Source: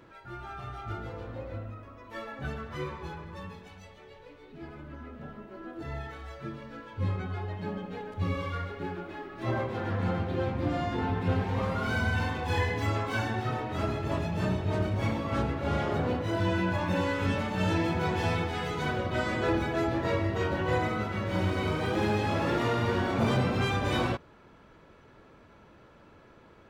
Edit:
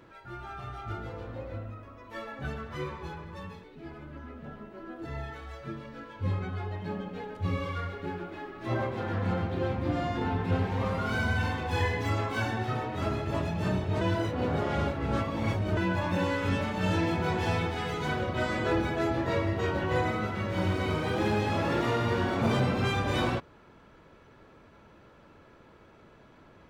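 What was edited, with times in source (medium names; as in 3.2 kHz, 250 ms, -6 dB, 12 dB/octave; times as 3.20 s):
3.64–4.41 s: delete
14.78–16.54 s: reverse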